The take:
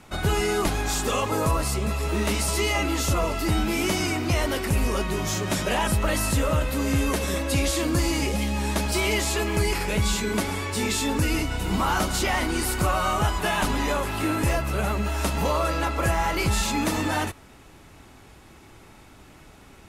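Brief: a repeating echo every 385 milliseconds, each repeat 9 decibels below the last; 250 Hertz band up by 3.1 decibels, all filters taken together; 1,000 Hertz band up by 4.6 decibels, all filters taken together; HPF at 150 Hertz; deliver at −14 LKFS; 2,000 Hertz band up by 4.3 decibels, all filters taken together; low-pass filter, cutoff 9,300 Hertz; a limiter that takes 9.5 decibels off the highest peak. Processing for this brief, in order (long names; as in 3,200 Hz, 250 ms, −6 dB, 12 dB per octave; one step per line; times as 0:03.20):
high-pass filter 150 Hz
low-pass filter 9,300 Hz
parametric band 250 Hz +4.5 dB
parametric band 1,000 Hz +4.5 dB
parametric band 2,000 Hz +4 dB
brickwall limiter −18 dBFS
repeating echo 385 ms, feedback 35%, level −9 dB
level +12 dB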